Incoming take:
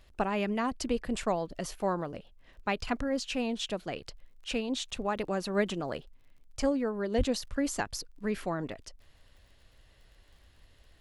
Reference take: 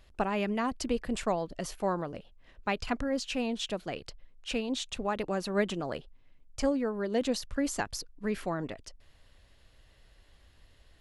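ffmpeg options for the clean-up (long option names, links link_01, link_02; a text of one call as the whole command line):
ffmpeg -i in.wav -filter_complex "[0:a]adeclick=threshold=4,asplit=3[link_01][link_02][link_03];[link_01]afade=type=out:start_time=7.17:duration=0.02[link_04];[link_02]highpass=frequency=140:width=0.5412,highpass=frequency=140:width=1.3066,afade=type=in:start_time=7.17:duration=0.02,afade=type=out:start_time=7.29:duration=0.02[link_05];[link_03]afade=type=in:start_time=7.29:duration=0.02[link_06];[link_04][link_05][link_06]amix=inputs=3:normalize=0" out.wav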